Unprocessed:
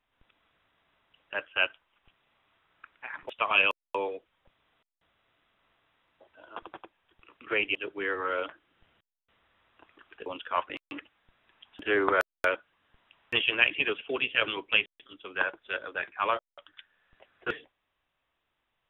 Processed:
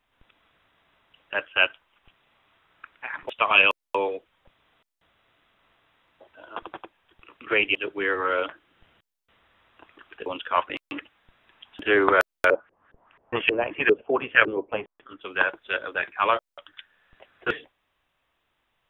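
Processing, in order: 12.48–15.20 s: LFO low-pass saw up 5.6 Hz -> 0.9 Hz 410–2000 Hz; trim +6 dB

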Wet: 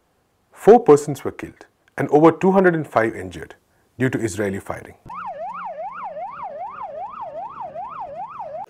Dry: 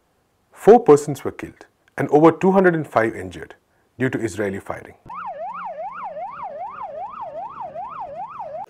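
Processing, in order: 3.34–5.56 s: tone controls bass +3 dB, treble +5 dB

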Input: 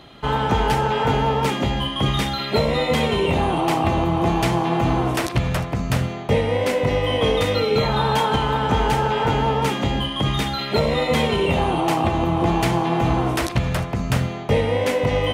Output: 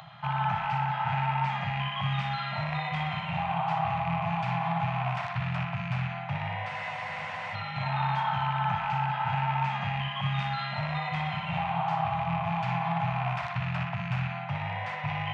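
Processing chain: rattle on loud lows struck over -21 dBFS, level -15 dBFS; peak limiter -15.5 dBFS, peak gain reduction 8.5 dB; high-pass 120 Hz 24 dB/octave; tape spacing loss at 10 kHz 35 dB; band-passed feedback delay 60 ms, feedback 81%, band-pass 1.9 kHz, level -3 dB; upward compressor, threshold -38 dBFS; elliptic band-stop 160–730 Hz, stop band 50 dB; spectral freeze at 6.72 s, 0.81 s

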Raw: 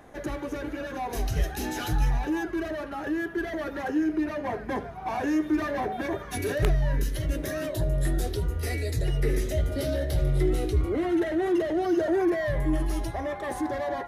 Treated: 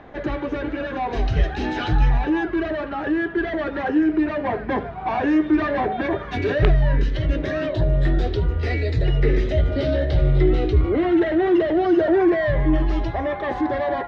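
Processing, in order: low-pass 3.9 kHz 24 dB/octave; trim +7 dB

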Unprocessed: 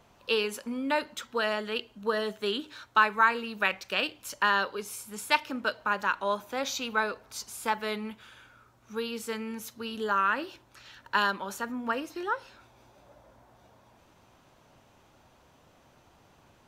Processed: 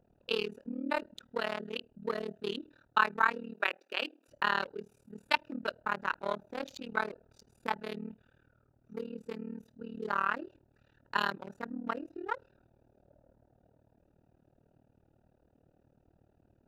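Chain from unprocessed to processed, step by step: local Wiener filter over 41 samples; 3.54–4.28 s: steep high-pass 250 Hz 48 dB/octave; AM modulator 38 Hz, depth 95%

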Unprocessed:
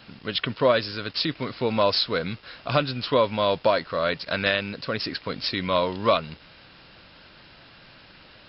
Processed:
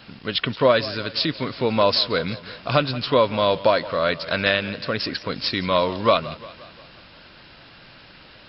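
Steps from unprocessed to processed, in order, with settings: modulated delay 176 ms, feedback 55%, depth 111 cents, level -17.5 dB; trim +3 dB

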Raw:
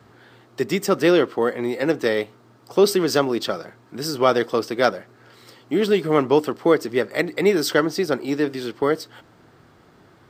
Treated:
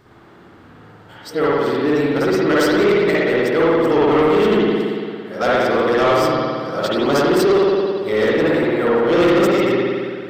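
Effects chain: reverse the whole clip; spring tank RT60 1.9 s, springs 56 ms, chirp 40 ms, DRR -7.5 dB; saturation -10 dBFS, distortion -11 dB

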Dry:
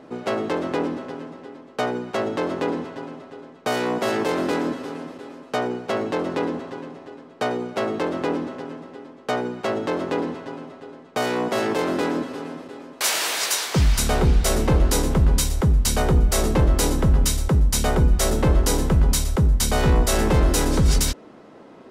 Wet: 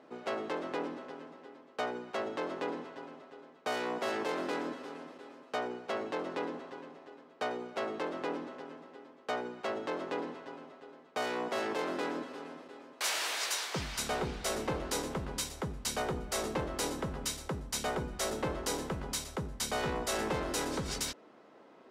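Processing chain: high-pass 470 Hz 6 dB/octave; treble shelf 8.5 kHz -9 dB; trim -8.5 dB

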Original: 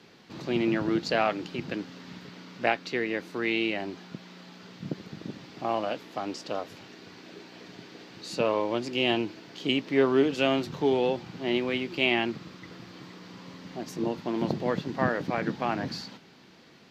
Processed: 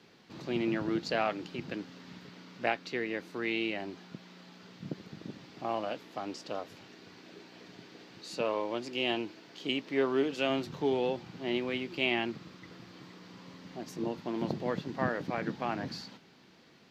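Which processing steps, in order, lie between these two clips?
8.20–10.50 s: bass shelf 140 Hz -9.5 dB; trim -5 dB

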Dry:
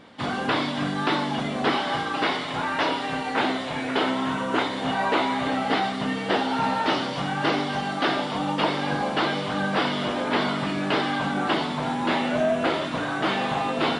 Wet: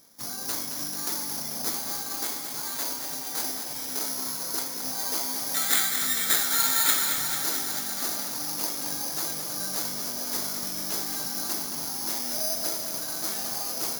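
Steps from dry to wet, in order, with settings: 5.54–7.19 s: high-order bell 1.8 kHz +14.5 dB 1.2 oct; careless resampling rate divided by 8×, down filtered, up zero stuff; bit-crushed delay 221 ms, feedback 80%, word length 4-bit, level -7 dB; trim -16 dB

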